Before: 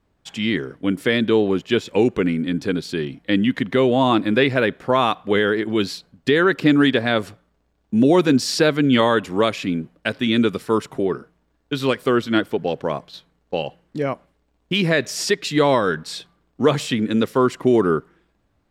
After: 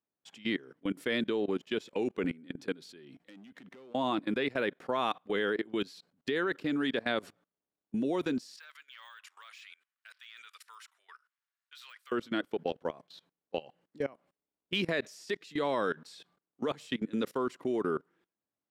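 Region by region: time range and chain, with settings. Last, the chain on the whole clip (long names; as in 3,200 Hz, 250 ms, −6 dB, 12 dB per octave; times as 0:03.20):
0:03.16–0:03.95: downward compressor 2.5 to 1, threshold −33 dBFS + gain into a clipping stage and back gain 27 dB
0:08.56–0:12.12: de-essing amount 80% + high-pass filter 1,300 Hz 24 dB per octave
whole clip: high-pass filter 200 Hz 12 dB per octave; output level in coarse steps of 22 dB; level −8 dB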